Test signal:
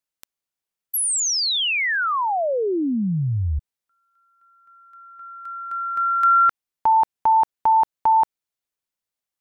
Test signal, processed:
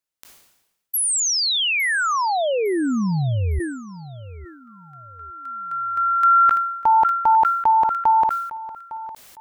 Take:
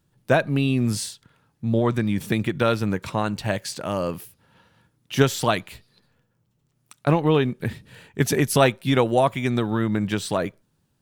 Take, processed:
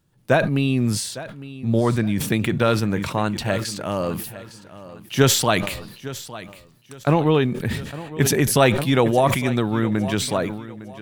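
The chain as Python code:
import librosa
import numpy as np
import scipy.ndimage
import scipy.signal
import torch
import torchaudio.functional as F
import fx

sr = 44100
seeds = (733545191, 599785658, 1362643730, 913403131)

y = fx.echo_feedback(x, sr, ms=857, feedback_pct=31, wet_db=-16.0)
y = fx.sustainer(y, sr, db_per_s=60.0)
y = y * librosa.db_to_amplitude(1.0)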